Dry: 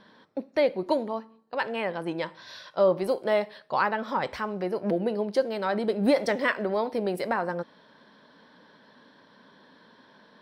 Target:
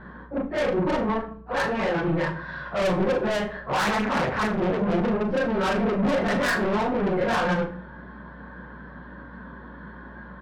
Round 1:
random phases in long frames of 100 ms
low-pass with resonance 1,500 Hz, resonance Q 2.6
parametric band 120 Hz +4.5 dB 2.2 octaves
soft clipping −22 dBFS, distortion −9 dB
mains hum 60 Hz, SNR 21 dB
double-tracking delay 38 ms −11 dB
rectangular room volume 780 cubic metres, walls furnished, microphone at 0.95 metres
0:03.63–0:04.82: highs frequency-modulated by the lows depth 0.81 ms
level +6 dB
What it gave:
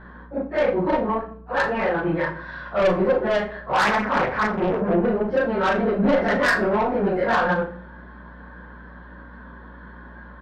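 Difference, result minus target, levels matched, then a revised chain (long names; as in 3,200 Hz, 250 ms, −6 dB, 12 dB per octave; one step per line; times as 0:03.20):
125 Hz band −3.5 dB; soft clipping: distortion −4 dB
random phases in long frames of 100 ms
low-pass with resonance 1,500 Hz, resonance Q 2.6
parametric band 120 Hz +12.5 dB 2.2 octaves
soft clipping −28.5 dBFS, distortion −4 dB
mains hum 60 Hz, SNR 21 dB
double-tracking delay 38 ms −11 dB
rectangular room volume 780 cubic metres, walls furnished, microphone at 0.95 metres
0:03.63–0:04.82: highs frequency-modulated by the lows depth 0.81 ms
level +6 dB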